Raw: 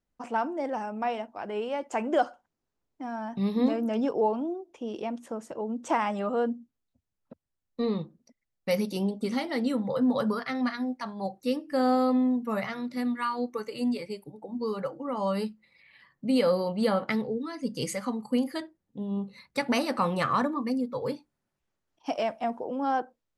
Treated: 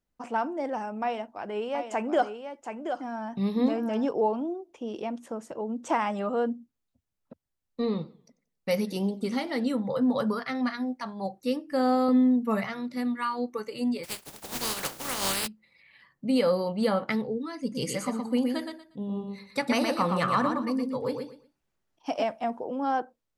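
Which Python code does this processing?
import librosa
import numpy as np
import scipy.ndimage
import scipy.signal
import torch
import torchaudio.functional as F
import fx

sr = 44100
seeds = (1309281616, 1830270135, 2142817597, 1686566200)

y = fx.echo_single(x, sr, ms=726, db=-7.5, at=(1.02, 4.06))
y = fx.echo_warbled(y, sr, ms=94, feedback_pct=36, rate_hz=2.8, cents=166, wet_db=-21, at=(7.82, 9.64))
y = fx.comb(y, sr, ms=4.5, depth=0.65, at=(12.08, 12.63))
y = fx.spec_flatten(y, sr, power=0.21, at=(14.03, 15.46), fade=0.02)
y = fx.echo_feedback(y, sr, ms=118, feedback_pct=22, wet_db=-5, at=(17.6, 22.24))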